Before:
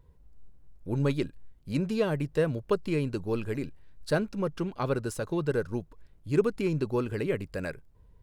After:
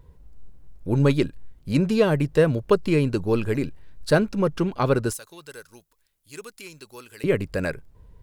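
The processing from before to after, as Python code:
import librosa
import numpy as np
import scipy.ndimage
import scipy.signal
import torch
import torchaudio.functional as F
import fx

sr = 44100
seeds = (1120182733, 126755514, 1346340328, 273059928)

y = fx.pre_emphasis(x, sr, coefficient=0.97, at=(5.13, 7.24))
y = y * 10.0 ** (8.0 / 20.0)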